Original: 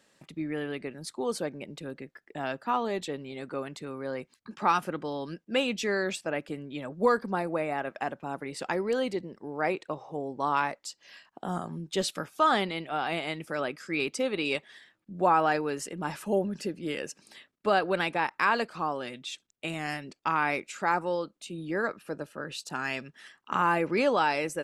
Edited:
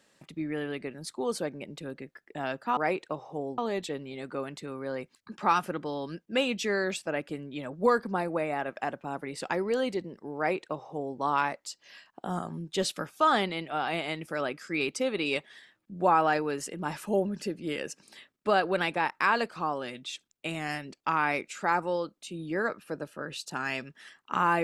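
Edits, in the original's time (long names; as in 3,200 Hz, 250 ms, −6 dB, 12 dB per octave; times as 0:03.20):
0:09.56–0:10.37: duplicate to 0:02.77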